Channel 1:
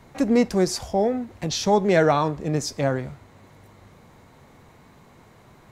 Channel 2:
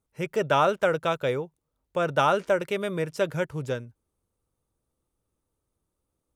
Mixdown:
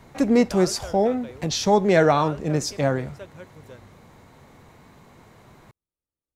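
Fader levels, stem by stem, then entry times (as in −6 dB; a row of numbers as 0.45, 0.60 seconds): +1.0, −15.5 decibels; 0.00, 0.00 seconds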